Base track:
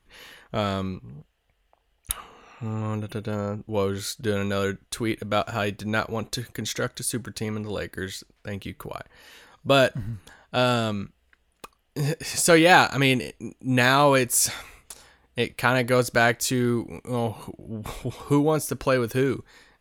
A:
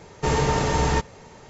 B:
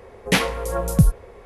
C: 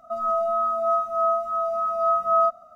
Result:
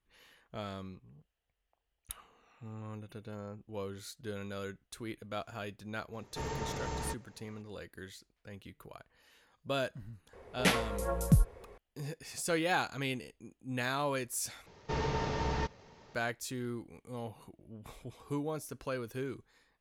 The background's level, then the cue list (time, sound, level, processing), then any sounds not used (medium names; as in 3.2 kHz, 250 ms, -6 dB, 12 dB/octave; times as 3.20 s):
base track -15.5 dB
6.13 s: add A -16.5 dB
10.33 s: add B -9.5 dB
14.66 s: replace with A -11.5 dB + CVSD coder 32 kbps
not used: C